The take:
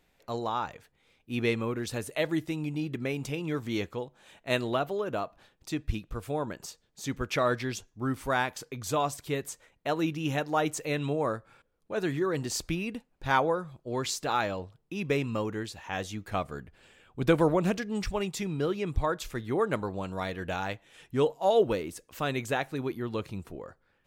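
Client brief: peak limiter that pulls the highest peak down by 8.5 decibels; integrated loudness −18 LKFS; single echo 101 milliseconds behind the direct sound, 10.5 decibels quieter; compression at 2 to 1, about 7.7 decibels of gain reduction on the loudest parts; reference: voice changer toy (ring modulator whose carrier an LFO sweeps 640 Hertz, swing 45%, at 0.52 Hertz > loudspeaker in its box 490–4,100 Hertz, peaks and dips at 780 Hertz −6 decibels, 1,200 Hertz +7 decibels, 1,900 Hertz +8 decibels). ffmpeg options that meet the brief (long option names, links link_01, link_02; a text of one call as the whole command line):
ffmpeg -i in.wav -af "acompressor=threshold=-32dB:ratio=2,alimiter=level_in=2dB:limit=-24dB:level=0:latency=1,volume=-2dB,aecho=1:1:101:0.299,aeval=exprs='val(0)*sin(2*PI*640*n/s+640*0.45/0.52*sin(2*PI*0.52*n/s))':channel_layout=same,highpass=490,equalizer=frequency=780:width_type=q:width=4:gain=-6,equalizer=frequency=1200:width_type=q:width=4:gain=7,equalizer=frequency=1900:width_type=q:width=4:gain=8,lowpass=frequency=4100:width=0.5412,lowpass=frequency=4100:width=1.3066,volume=20.5dB" out.wav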